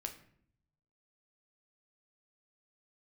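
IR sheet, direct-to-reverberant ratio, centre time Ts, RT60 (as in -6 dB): 5.0 dB, 12 ms, 0.65 s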